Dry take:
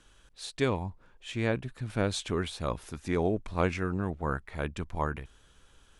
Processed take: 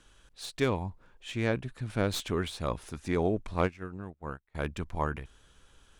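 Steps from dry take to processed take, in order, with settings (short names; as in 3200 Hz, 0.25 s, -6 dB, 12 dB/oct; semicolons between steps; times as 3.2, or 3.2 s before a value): tracing distortion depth 0.031 ms; 3.63–4.55 upward expander 2.5:1, over -42 dBFS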